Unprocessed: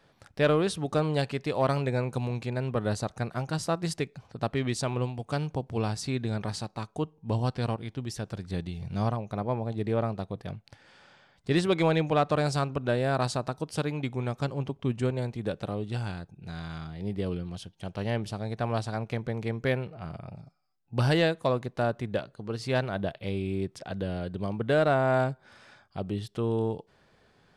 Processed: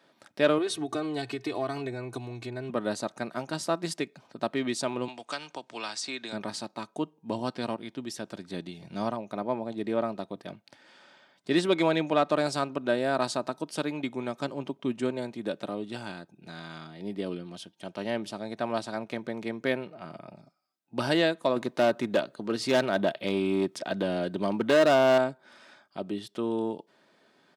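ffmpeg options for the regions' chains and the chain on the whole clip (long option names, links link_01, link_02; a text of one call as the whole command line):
ffmpeg -i in.wav -filter_complex "[0:a]asettb=1/sr,asplit=3[link_01][link_02][link_03];[link_01]atrim=end=0.584[link_04];[link_02]atrim=start=0.58:end=2.7,asetpts=PTS-STARTPTS,afade=type=in:duration=0.004:curve=qsin,afade=type=out:start_time=2.116:duration=0.004:curve=qsin,equalizer=frequency=120:width_type=o:width=0.48:gain=14,aecho=1:1:2.7:0.92,atrim=end_sample=93492,acompressor=threshold=-27dB:ratio=4:attack=3.2:release=140:knee=1:detection=peak[link_05];[link_03]atrim=start=2.696[link_06];[link_04][link_05]acrossfade=duration=0.004:curve1=hsin:curve2=qsin[link_07];[link_07][link_06]acrossfade=duration=0.004:curve1=qsin:curve2=hsin,asettb=1/sr,asplit=3[link_08][link_09][link_10];[link_08]atrim=end=5.084[link_11];[link_09]atrim=start=5.08:end=6.33,asetpts=PTS-STARTPTS,afade=type=in:duration=0.004:curve=qsin,afade=type=out:start_time=1.246:duration=0.004:curve=qsin,lowpass=frequency=8600:width=0.5412,lowpass=frequency=8600:width=1.3066,tiltshelf=frequency=640:gain=-7,acrossover=split=250|1000[link_12][link_13][link_14];[link_12]acompressor=threshold=-49dB:ratio=4[link_15];[link_13]acompressor=threshold=-40dB:ratio=4[link_16];[link_14]acompressor=threshold=-33dB:ratio=4[link_17];[link_15][link_16][link_17]amix=inputs=3:normalize=0[link_18];[link_10]atrim=start=6.326[link_19];[link_11][link_18]acrossfade=duration=0.004:curve1=hsin:curve2=qsin[link_20];[link_20][link_19]acrossfade=duration=0.004:curve1=qsin:curve2=hsin,asettb=1/sr,asplit=3[link_21][link_22][link_23];[link_21]atrim=end=21.564[link_24];[link_22]atrim=start=21.56:end=25.18,asetpts=PTS-STARTPTS,afade=type=in:duration=0.004:curve=qsin,afade=type=out:start_time=3.616:duration=0.004:curve=qsin,asoftclip=type=hard:threshold=-24.5dB,acontrast=49[link_25];[link_23]atrim=start=25.176[link_26];[link_24][link_25]acrossfade=duration=0.004:curve1=hsin:curve2=qsin[link_27];[link_27][link_26]acrossfade=duration=0.004:curve1=qsin:curve2=hsin,highpass=frequency=170:width=0.5412,highpass=frequency=170:width=1.3066,equalizer=frequency=3600:width=7:gain=2.5,aecho=1:1:3.2:0.37" out.wav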